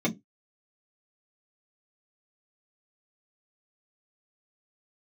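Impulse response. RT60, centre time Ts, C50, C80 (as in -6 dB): 0.20 s, 10 ms, 20.5 dB, 30.0 dB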